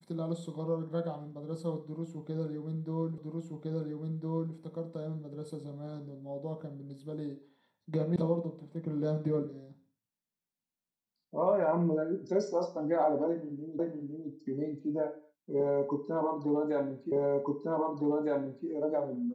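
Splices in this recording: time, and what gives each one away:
0:03.18: the same again, the last 1.36 s
0:08.16: cut off before it has died away
0:13.79: the same again, the last 0.51 s
0:17.12: the same again, the last 1.56 s

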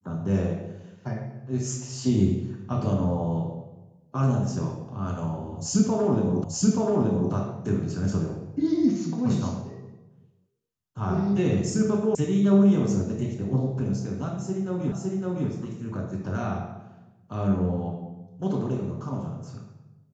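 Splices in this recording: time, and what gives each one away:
0:06.44: the same again, the last 0.88 s
0:12.15: cut off before it has died away
0:14.92: the same again, the last 0.56 s

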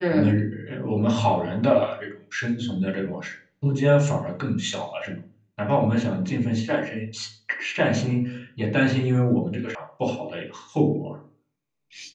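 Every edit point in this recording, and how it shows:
0:09.75: cut off before it has died away

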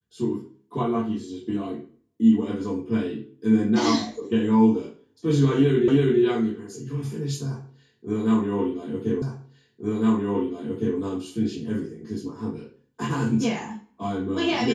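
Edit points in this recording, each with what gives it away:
0:05.88: the same again, the last 0.33 s
0:09.22: the same again, the last 1.76 s

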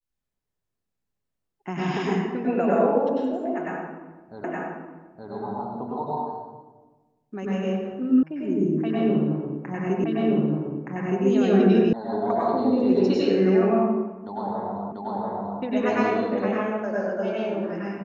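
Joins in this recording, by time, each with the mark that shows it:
0:04.44: the same again, the last 0.87 s
0:08.23: cut off before it has died away
0:10.04: the same again, the last 1.22 s
0:11.93: cut off before it has died away
0:14.92: the same again, the last 0.69 s

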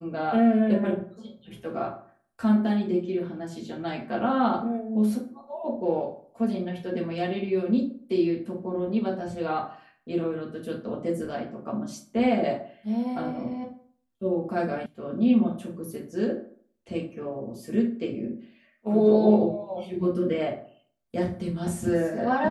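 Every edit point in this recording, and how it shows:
0:14.86: cut off before it has died away

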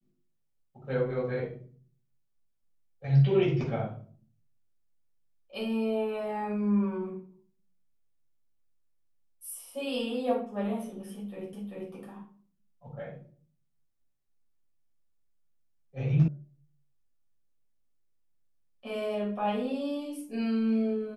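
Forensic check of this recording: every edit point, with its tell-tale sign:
0:11.53: the same again, the last 0.39 s
0:16.28: cut off before it has died away

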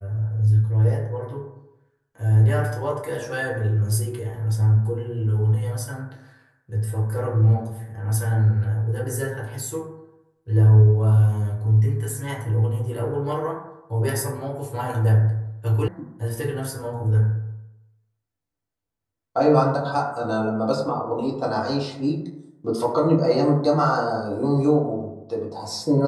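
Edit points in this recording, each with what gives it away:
0:15.88: cut off before it has died away

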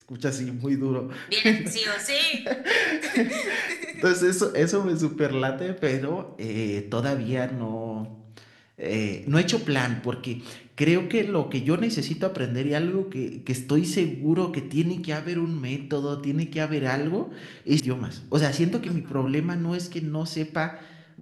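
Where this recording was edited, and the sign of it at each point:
0:17.80: cut off before it has died away

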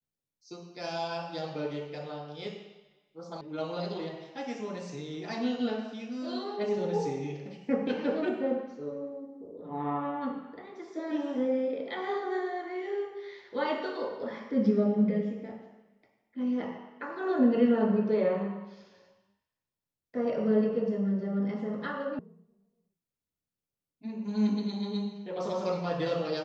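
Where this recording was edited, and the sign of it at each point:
0:03.41: cut off before it has died away
0:22.19: cut off before it has died away

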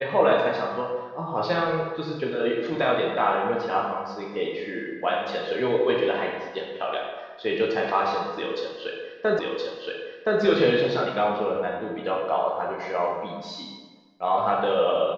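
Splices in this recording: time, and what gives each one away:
0:09.39: the same again, the last 1.02 s

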